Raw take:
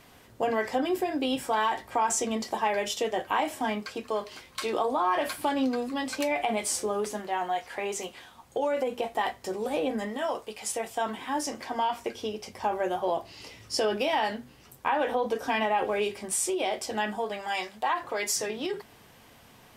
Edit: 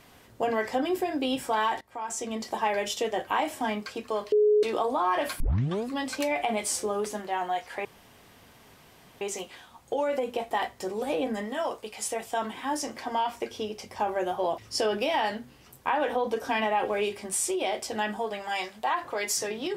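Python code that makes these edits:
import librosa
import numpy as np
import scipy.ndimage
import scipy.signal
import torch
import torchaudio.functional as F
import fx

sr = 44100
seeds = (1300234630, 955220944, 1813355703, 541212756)

y = fx.edit(x, sr, fx.fade_in_from(start_s=1.81, length_s=0.81, floor_db=-19.0),
    fx.bleep(start_s=4.32, length_s=0.31, hz=421.0, db=-17.5),
    fx.tape_start(start_s=5.4, length_s=0.44),
    fx.insert_room_tone(at_s=7.85, length_s=1.36),
    fx.cut(start_s=13.22, length_s=0.35), tone=tone)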